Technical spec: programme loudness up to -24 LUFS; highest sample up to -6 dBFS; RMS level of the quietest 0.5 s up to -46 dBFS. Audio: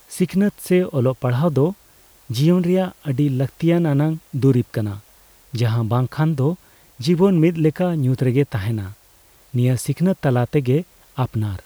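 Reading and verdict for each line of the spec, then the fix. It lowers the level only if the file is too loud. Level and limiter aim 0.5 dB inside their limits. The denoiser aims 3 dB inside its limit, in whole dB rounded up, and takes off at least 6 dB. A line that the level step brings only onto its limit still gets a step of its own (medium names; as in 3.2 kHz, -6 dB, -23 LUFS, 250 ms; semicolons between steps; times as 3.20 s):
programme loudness -20.0 LUFS: fail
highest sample -5.5 dBFS: fail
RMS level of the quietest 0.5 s -52 dBFS: pass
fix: trim -4.5 dB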